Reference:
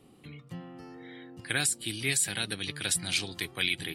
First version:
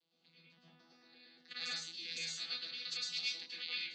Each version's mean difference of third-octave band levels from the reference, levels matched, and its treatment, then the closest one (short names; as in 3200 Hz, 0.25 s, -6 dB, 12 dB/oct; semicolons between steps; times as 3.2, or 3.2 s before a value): 12.5 dB: arpeggiated vocoder bare fifth, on E3, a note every 0.114 s; band-pass 4300 Hz, Q 4.7; plate-style reverb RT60 0.5 s, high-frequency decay 0.55×, pre-delay 95 ms, DRR -7.5 dB; gain +3 dB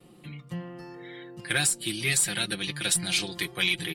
2.5 dB: gate with hold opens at -52 dBFS; comb 5.7 ms, depth 72%; in parallel at -10 dB: one-sided clip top -33.5 dBFS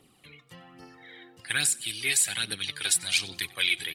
5.5 dB: tilt shelf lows -6 dB, about 790 Hz; phaser 1.2 Hz, delay 2.9 ms, feedback 50%; on a send: feedback echo 93 ms, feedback 34%, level -22 dB; on the sum: gain -3 dB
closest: second